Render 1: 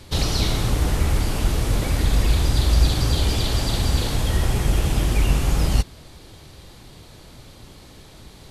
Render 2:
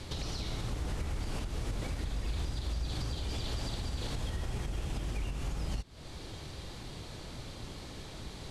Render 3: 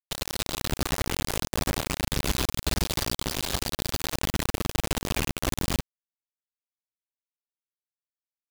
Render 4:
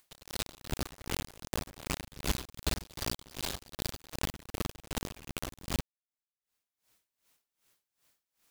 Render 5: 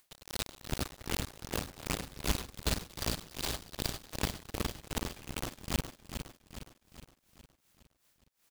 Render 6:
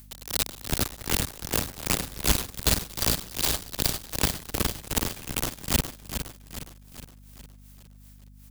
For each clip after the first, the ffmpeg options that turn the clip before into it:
-af "lowpass=8.7k,acompressor=threshold=-25dB:ratio=6,alimiter=level_in=2.5dB:limit=-24dB:level=0:latency=1:release=425,volume=-2.5dB"
-af "acrusher=bits=4:mix=0:aa=0.000001,volume=6dB"
-af "acompressor=mode=upward:threshold=-41dB:ratio=2.5,aeval=exprs='val(0)*pow(10,-22*(0.5-0.5*cos(2*PI*2.6*n/s))/20)':c=same,volume=-3.5dB"
-af "aecho=1:1:413|826|1239|1652|2065|2478:0.376|0.192|0.0978|0.0499|0.0254|0.013"
-filter_complex "[0:a]acrossover=split=290|1500|3400[a][b][c][d];[a]acrusher=samples=25:mix=1:aa=0.000001[e];[e][b][c][d]amix=inputs=4:normalize=0,crystalizer=i=1:c=0,aeval=exprs='val(0)+0.00158*(sin(2*PI*50*n/s)+sin(2*PI*2*50*n/s)/2+sin(2*PI*3*50*n/s)/3+sin(2*PI*4*50*n/s)/4+sin(2*PI*5*50*n/s)/5)':c=same,volume=7dB"

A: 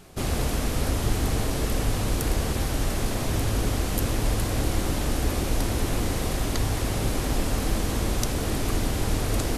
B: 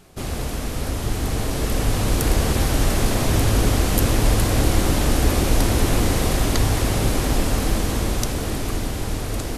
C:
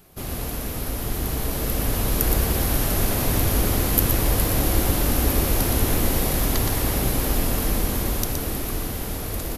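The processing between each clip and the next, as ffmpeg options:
-af "dynaudnorm=f=280:g=13:m=11.5dB,volume=-1dB"
-filter_complex "[0:a]aresample=32000,aresample=44100,asplit=2[a][b];[b]aecho=0:1:119:0.531[c];[a][c]amix=inputs=2:normalize=0,aexciter=amount=6.2:drive=2.1:freq=11k,volume=-4dB"

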